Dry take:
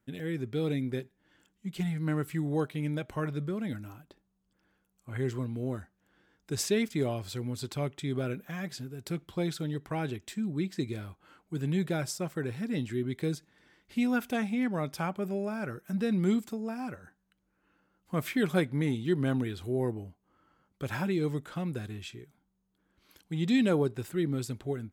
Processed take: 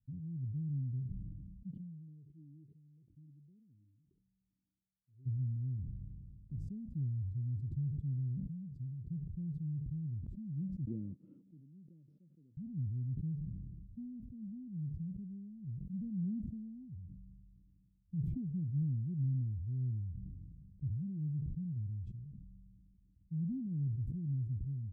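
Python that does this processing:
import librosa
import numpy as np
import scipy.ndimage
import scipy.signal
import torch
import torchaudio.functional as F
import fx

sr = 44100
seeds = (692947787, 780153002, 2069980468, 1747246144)

y = fx.vowel_sweep(x, sr, vowels='e-i', hz=1.4, at=(1.7, 5.25), fade=0.02)
y = fx.spec_clip(y, sr, under_db=19, at=(5.76, 6.57), fade=0.02)
y = fx.cabinet(y, sr, low_hz=320.0, low_slope=24, high_hz=2500.0, hz=(390.0, 570.0, 970.0, 1700.0), db=(-8, 8, -6, 5), at=(10.85, 12.57))
y = scipy.signal.sosfilt(scipy.signal.cheby2(4, 70, 630.0, 'lowpass', fs=sr, output='sos'), y)
y = fx.sustainer(y, sr, db_per_s=27.0)
y = y * 10.0 ** (2.0 / 20.0)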